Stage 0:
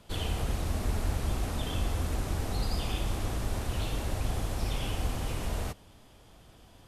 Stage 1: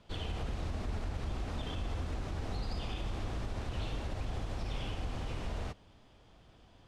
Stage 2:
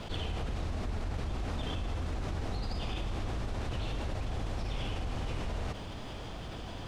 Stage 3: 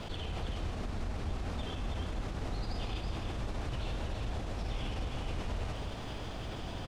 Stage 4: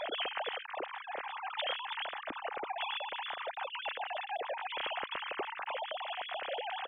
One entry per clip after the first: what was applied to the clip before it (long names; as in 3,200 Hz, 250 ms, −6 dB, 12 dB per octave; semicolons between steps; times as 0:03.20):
low-pass filter 5,000 Hz 12 dB per octave; brickwall limiter −23.5 dBFS, peak gain reduction 4.5 dB; level −4.5 dB
envelope flattener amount 70%
brickwall limiter −29.5 dBFS, peak gain reduction 5.5 dB; on a send: single-tap delay 324 ms −5.5 dB
three sine waves on the formant tracks; level −3 dB